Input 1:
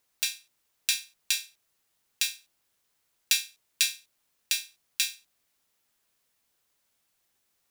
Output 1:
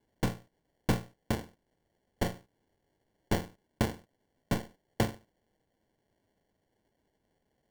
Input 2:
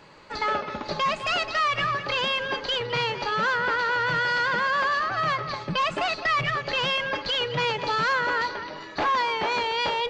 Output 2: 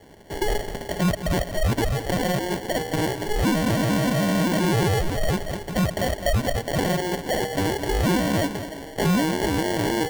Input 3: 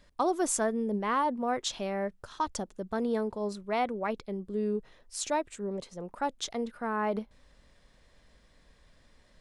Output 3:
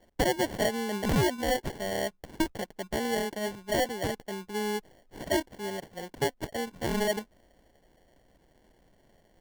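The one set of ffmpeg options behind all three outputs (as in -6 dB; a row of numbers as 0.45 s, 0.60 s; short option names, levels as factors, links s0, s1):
-filter_complex "[0:a]asplit=2[s0][s1];[s1]highpass=f=720:p=1,volume=2.82,asoftclip=type=tanh:threshold=0.891[s2];[s0][s2]amix=inputs=2:normalize=0,lowpass=f=2800:p=1,volume=0.501,acrossover=split=7100[s3][s4];[s4]acompressor=threshold=0.00282:ratio=4:attack=1:release=60[s5];[s3][s5]amix=inputs=2:normalize=0,acrusher=samples=35:mix=1:aa=0.000001"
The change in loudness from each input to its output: -6.0 LU, +1.0 LU, +1.0 LU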